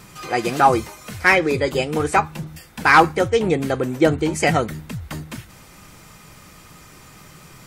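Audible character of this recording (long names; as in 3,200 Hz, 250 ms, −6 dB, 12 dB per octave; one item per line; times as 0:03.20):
background noise floor −46 dBFS
spectral slope −5.0 dB per octave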